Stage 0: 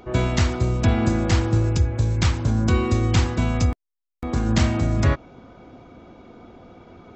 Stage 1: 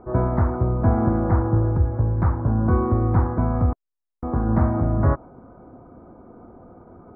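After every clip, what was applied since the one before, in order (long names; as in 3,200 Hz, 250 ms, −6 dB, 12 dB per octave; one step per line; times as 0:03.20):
dynamic equaliser 880 Hz, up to +4 dB, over −39 dBFS, Q 1.2
inverse Chebyshev low-pass filter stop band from 2,700 Hz, stop band 40 dB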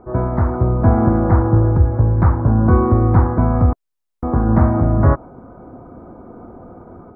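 automatic gain control gain up to 6 dB
level +1.5 dB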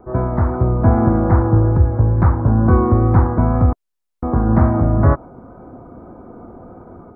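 tape wow and flutter 22 cents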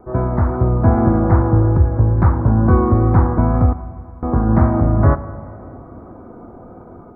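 four-comb reverb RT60 2.8 s, combs from 33 ms, DRR 13.5 dB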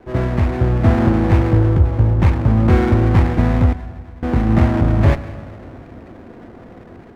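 lower of the sound and its delayed copy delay 0.36 ms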